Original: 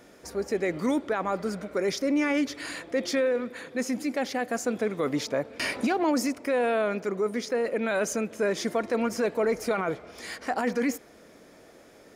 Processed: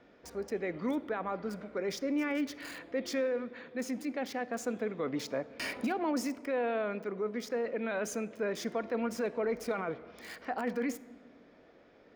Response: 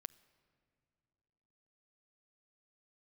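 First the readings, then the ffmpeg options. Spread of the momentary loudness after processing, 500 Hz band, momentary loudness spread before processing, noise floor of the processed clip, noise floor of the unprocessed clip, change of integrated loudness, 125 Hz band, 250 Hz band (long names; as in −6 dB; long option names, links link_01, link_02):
7 LU, −7.0 dB, 6 LU, −60 dBFS, −53 dBFS, −7.0 dB, −7.0 dB, −6.5 dB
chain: -filter_complex "[0:a]highshelf=frequency=11000:gain=-4.5,acrossover=split=480|4500[link_01][link_02][link_03];[link_03]acrusher=bits=6:mix=0:aa=0.000001[link_04];[link_01][link_02][link_04]amix=inputs=3:normalize=0[link_05];[1:a]atrim=start_sample=2205,asetrate=74970,aresample=44100[link_06];[link_05][link_06]afir=irnorm=-1:irlink=0,volume=3dB"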